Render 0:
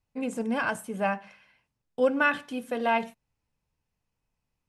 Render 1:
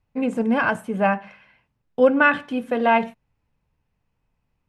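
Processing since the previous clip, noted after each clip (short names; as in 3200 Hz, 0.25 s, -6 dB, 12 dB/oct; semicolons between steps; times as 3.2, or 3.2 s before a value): tone controls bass +2 dB, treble -13 dB; gain +7.5 dB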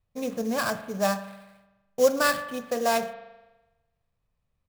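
comb 1.7 ms, depth 44%; sample-rate reducer 6300 Hz, jitter 20%; spring tank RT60 1.1 s, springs 41 ms, chirp 70 ms, DRR 11.5 dB; gain -6.5 dB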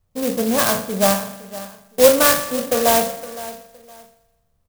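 spectral trails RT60 0.42 s; feedback echo 0.514 s, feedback 25%, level -16 dB; clock jitter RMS 0.11 ms; gain +8 dB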